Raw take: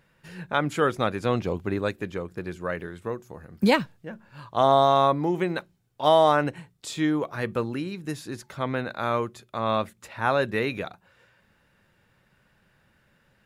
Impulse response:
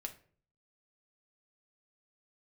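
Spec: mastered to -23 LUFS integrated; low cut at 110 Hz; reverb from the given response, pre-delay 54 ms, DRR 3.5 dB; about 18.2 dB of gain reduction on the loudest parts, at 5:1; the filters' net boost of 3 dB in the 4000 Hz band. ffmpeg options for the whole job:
-filter_complex "[0:a]highpass=110,equalizer=f=4k:t=o:g=3.5,acompressor=threshold=-35dB:ratio=5,asplit=2[a][b];[1:a]atrim=start_sample=2205,adelay=54[c];[b][c]afir=irnorm=-1:irlink=0,volume=-1dB[d];[a][d]amix=inputs=2:normalize=0,volume=14.5dB"

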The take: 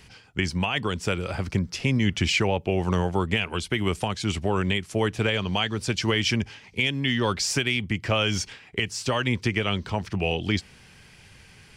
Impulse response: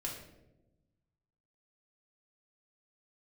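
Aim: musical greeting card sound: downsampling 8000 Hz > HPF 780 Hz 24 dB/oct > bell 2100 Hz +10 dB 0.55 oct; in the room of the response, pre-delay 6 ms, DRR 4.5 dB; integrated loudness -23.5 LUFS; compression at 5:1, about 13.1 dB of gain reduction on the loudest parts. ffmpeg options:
-filter_complex "[0:a]acompressor=threshold=-34dB:ratio=5,asplit=2[a][b];[1:a]atrim=start_sample=2205,adelay=6[c];[b][c]afir=irnorm=-1:irlink=0,volume=-5dB[d];[a][d]amix=inputs=2:normalize=0,aresample=8000,aresample=44100,highpass=f=780:w=0.5412,highpass=f=780:w=1.3066,equalizer=f=2.1k:t=o:w=0.55:g=10,volume=11dB"

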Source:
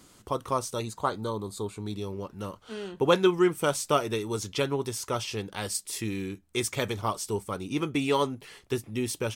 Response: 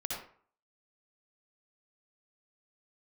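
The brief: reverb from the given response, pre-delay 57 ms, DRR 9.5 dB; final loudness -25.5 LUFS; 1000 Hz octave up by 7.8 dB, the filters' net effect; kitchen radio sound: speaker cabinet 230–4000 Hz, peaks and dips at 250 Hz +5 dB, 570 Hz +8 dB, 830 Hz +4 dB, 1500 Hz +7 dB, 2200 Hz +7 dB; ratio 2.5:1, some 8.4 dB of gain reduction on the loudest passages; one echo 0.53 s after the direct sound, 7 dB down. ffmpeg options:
-filter_complex "[0:a]equalizer=f=1k:t=o:g=5.5,acompressor=threshold=-28dB:ratio=2.5,aecho=1:1:530:0.447,asplit=2[a][b];[1:a]atrim=start_sample=2205,adelay=57[c];[b][c]afir=irnorm=-1:irlink=0,volume=-12dB[d];[a][d]amix=inputs=2:normalize=0,highpass=230,equalizer=f=250:t=q:w=4:g=5,equalizer=f=570:t=q:w=4:g=8,equalizer=f=830:t=q:w=4:g=4,equalizer=f=1.5k:t=q:w=4:g=7,equalizer=f=2.2k:t=q:w=4:g=7,lowpass=f=4k:w=0.5412,lowpass=f=4k:w=1.3066,volume=4dB"

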